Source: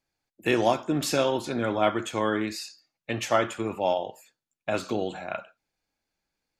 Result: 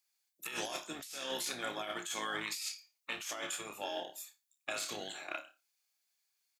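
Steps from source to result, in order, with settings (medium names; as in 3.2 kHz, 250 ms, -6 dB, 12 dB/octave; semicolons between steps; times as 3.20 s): differentiator; flutter echo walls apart 4.9 m, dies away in 0.23 s; in parallel at -11 dB: crossover distortion -50.5 dBFS; on the sum: compressor with a negative ratio -42 dBFS, ratio -1; harmony voices -12 st -10 dB; trim +2 dB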